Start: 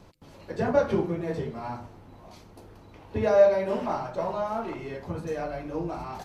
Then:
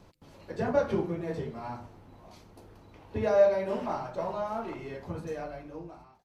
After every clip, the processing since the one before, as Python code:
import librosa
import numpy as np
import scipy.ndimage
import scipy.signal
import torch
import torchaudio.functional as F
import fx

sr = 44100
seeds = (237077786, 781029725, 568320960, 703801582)

y = fx.fade_out_tail(x, sr, length_s=1.05)
y = y * 10.0 ** (-3.5 / 20.0)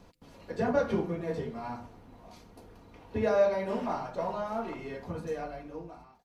y = x + 0.32 * np.pad(x, (int(4.2 * sr / 1000.0), 0))[:len(x)]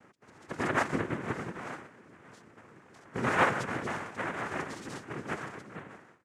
y = fx.spec_quant(x, sr, step_db=30)
y = fx.noise_vocoder(y, sr, seeds[0], bands=3)
y = y * 10.0 ** (-1.0 / 20.0)